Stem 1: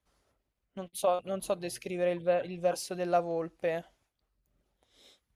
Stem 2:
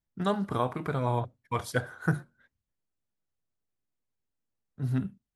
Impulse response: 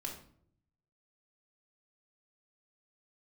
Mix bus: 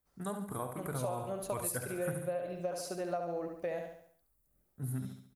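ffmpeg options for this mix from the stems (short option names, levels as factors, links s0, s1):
-filter_complex "[0:a]volume=0.708,asplit=2[s0][s1];[s1]volume=0.473[s2];[1:a]dynaudnorm=f=390:g=5:m=2.11,aexciter=amount=13.7:drive=2.9:freq=7800,volume=0.299,asplit=2[s3][s4];[s4]volume=0.355[s5];[s2][s5]amix=inputs=2:normalize=0,aecho=0:1:70|140|210|280|350|420:1|0.45|0.202|0.0911|0.041|0.0185[s6];[s0][s3][s6]amix=inputs=3:normalize=0,equalizer=f=3100:w=1.6:g=-6.5,acompressor=threshold=0.0251:ratio=10"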